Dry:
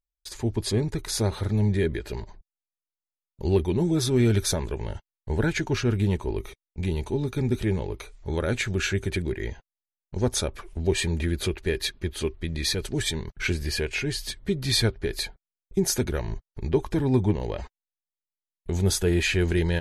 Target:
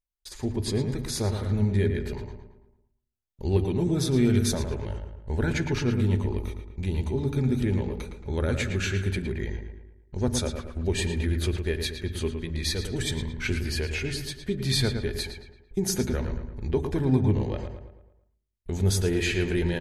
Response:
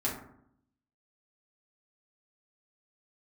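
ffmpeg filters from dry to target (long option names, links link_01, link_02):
-filter_complex "[0:a]asplit=2[link_01][link_02];[link_02]adelay=112,lowpass=frequency=3000:poles=1,volume=-6.5dB,asplit=2[link_03][link_04];[link_04]adelay=112,lowpass=frequency=3000:poles=1,volume=0.49,asplit=2[link_05][link_06];[link_06]adelay=112,lowpass=frequency=3000:poles=1,volume=0.49,asplit=2[link_07][link_08];[link_08]adelay=112,lowpass=frequency=3000:poles=1,volume=0.49,asplit=2[link_09][link_10];[link_10]adelay=112,lowpass=frequency=3000:poles=1,volume=0.49,asplit=2[link_11][link_12];[link_12]adelay=112,lowpass=frequency=3000:poles=1,volume=0.49[link_13];[link_01][link_03][link_05][link_07][link_09][link_11][link_13]amix=inputs=7:normalize=0,asplit=2[link_14][link_15];[1:a]atrim=start_sample=2205,lowshelf=frequency=220:gain=11[link_16];[link_15][link_16]afir=irnorm=-1:irlink=0,volume=-19.5dB[link_17];[link_14][link_17]amix=inputs=2:normalize=0,volume=-4dB"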